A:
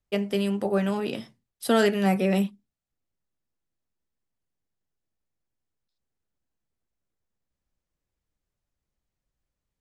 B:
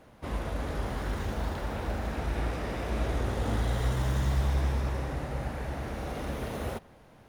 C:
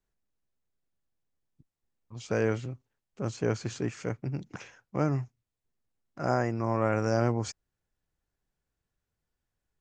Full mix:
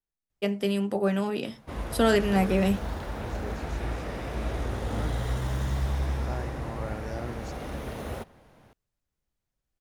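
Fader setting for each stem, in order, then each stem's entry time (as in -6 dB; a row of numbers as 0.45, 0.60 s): -1.0, -1.0, -11.5 dB; 0.30, 1.45, 0.00 s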